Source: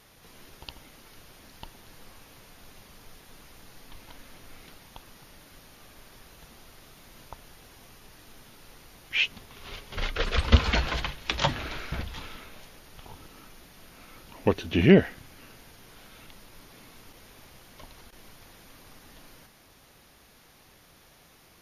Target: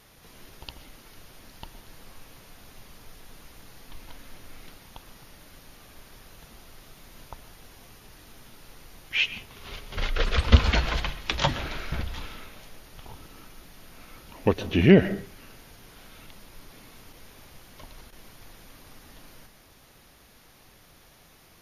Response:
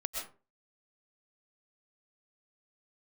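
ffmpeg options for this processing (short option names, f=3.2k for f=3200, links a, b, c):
-filter_complex "[0:a]asplit=2[a][b];[1:a]atrim=start_sample=2205,lowshelf=f=220:g=9.5,highshelf=f=11k:g=7.5[c];[b][c]afir=irnorm=-1:irlink=0,volume=-13dB[d];[a][d]amix=inputs=2:normalize=0,volume=-1dB"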